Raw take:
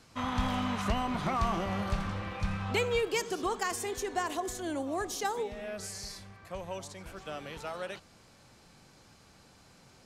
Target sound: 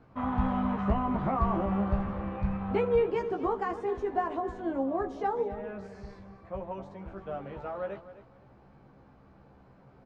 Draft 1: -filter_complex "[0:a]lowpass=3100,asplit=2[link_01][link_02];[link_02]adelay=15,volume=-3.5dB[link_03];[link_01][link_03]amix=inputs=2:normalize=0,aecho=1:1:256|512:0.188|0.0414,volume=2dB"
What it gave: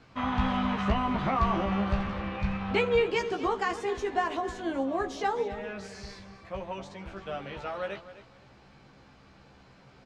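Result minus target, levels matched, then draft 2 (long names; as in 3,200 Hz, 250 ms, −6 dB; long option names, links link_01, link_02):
4,000 Hz band +14.5 dB
-filter_complex "[0:a]lowpass=1100,asplit=2[link_01][link_02];[link_02]adelay=15,volume=-3.5dB[link_03];[link_01][link_03]amix=inputs=2:normalize=0,aecho=1:1:256|512:0.188|0.0414,volume=2dB"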